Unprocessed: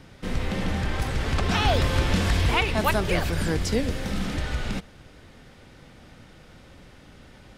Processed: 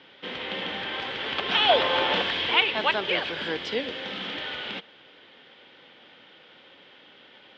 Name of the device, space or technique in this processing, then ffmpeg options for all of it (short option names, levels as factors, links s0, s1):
phone earpiece: -filter_complex "[0:a]asettb=1/sr,asplit=3[s0][s1][s2];[s0]atrim=end=1.694[s3];[s1]atrim=start=1.69:end=2.22,asetpts=PTS-STARTPTS,afade=t=in:d=0.004:c=qsin,afade=t=out:st=0.526:d=0.004:c=qsin,equalizer=f=760:w=0.92:g=9.5[s4];[s2]atrim=start=2.216[s5];[s3][s4]acrossfade=d=0.004:c1=hsin:c2=qsin[s6];[s6][s5]acrossfade=d=0.004:c1=qsin:c2=hsin,highpass=450,equalizer=f=680:t=q:w=4:g=-5,equalizer=f=1200:t=q:w=4:g=-4,equalizer=f=3200:t=q:w=4:g=10,lowpass=f=3800:w=0.5412,lowpass=f=3800:w=1.3066,volume=1.19"